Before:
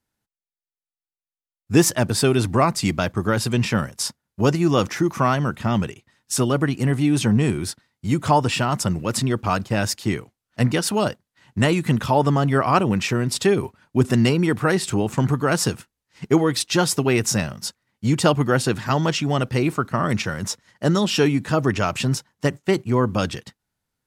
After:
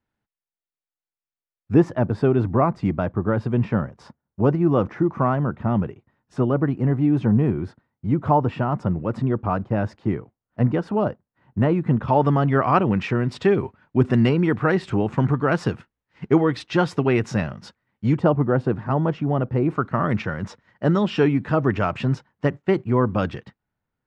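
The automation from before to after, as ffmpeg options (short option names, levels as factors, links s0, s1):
-af "asetnsamples=n=441:p=0,asendcmd='1.74 lowpass f 1100;12.08 lowpass f 2200;18.17 lowpass f 1000;19.7 lowpass f 2000',lowpass=2600"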